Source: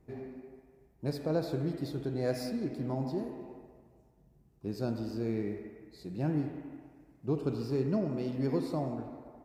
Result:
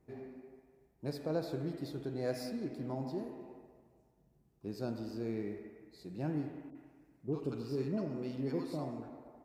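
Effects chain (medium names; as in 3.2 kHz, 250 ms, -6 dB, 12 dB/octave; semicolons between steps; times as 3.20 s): bass shelf 130 Hz -6 dB; 6.70–9.09 s: bands offset in time lows, highs 50 ms, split 750 Hz; trim -3.5 dB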